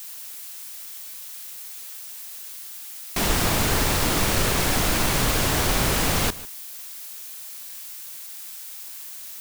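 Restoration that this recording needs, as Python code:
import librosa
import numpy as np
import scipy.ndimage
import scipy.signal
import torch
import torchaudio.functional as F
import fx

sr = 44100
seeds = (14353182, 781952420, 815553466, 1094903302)

y = fx.noise_reduce(x, sr, print_start_s=2.61, print_end_s=3.11, reduce_db=30.0)
y = fx.fix_echo_inverse(y, sr, delay_ms=148, level_db=-19.0)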